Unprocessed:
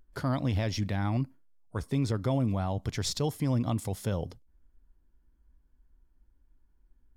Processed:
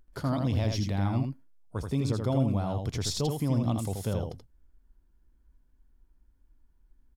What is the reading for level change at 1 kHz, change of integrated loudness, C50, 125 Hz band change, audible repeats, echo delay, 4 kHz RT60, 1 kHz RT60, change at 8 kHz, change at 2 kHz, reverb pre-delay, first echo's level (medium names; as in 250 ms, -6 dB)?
0.0 dB, +1.0 dB, no reverb, +1.5 dB, 1, 81 ms, no reverb, no reverb, +1.0 dB, -3.0 dB, no reverb, -5.0 dB